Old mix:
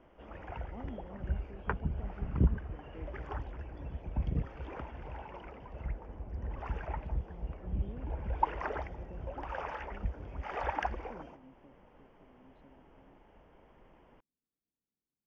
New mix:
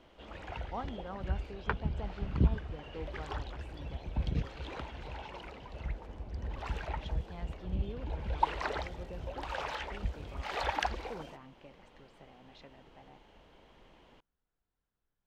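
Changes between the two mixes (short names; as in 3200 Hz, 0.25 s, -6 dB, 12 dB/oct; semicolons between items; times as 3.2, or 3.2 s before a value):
speech: remove band-pass 250 Hz, Q 1.8; background: remove running mean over 11 samples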